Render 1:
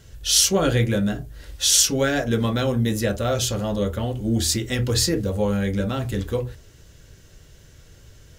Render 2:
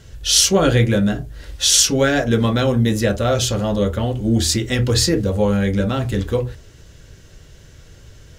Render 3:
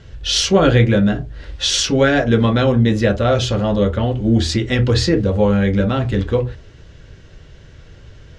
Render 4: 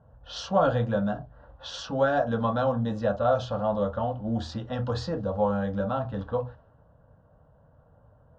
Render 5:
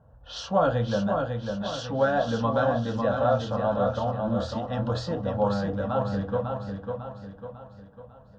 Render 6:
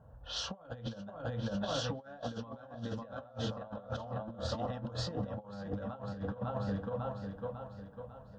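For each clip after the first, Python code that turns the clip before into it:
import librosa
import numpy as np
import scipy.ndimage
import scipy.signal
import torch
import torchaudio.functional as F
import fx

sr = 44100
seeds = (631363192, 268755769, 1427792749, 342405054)

y1 = fx.high_shelf(x, sr, hz=11000.0, db=-10.0)
y1 = y1 * 10.0 ** (5.0 / 20.0)
y2 = scipy.signal.sosfilt(scipy.signal.butter(2, 3800.0, 'lowpass', fs=sr, output='sos'), y1)
y2 = y2 * 10.0 ** (2.5 / 20.0)
y3 = fx.env_lowpass(y2, sr, base_hz=860.0, full_db=-9.5)
y3 = fx.bandpass_q(y3, sr, hz=680.0, q=0.65)
y3 = fx.fixed_phaser(y3, sr, hz=900.0, stages=4)
y3 = y3 * 10.0 ** (-2.0 / 20.0)
y4 = fx.echo_feedback(y3, sr, ms=549, feedback_pct=45, wet_db=-5)
y5 = fx.over_compress(y4, sr, threshold_db=-32.0, ratio=-0.5)
y5 = y5 * 10.0 ** (-6.5 / 20.0)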